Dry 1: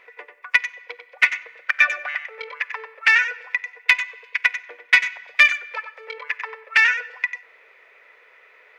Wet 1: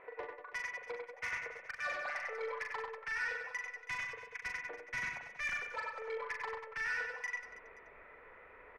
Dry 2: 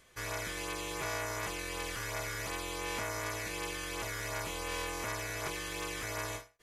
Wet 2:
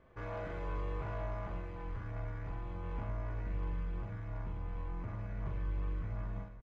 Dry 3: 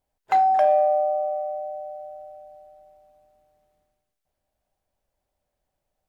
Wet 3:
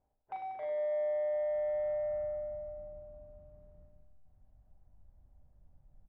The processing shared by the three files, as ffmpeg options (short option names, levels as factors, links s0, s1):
-af "lowpass=1000,asubboost=boost=9:cutoff=160,areverse,acompressor=threshold=0.0141:ratio=12,areverse,asoftclip=type=tanh:threshold=0.015,aecho=1:1:40|100|190|325|527.5:0.631|0.398|0.251|0.158|0.1,volume=1.41"